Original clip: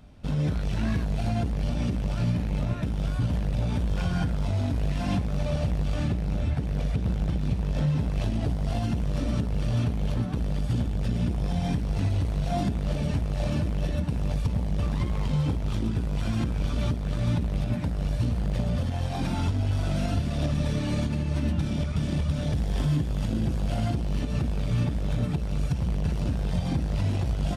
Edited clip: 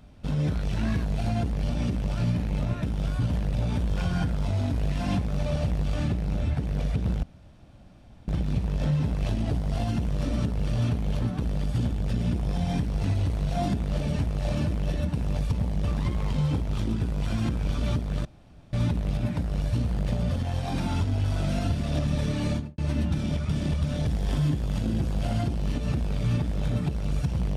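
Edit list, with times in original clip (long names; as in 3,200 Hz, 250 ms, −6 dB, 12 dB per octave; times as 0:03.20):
0:07.23: splice in room tone 1.05 s
0:17.20: splice in room tone 0.48 s
0:20.97–0:21.25: fade out and dull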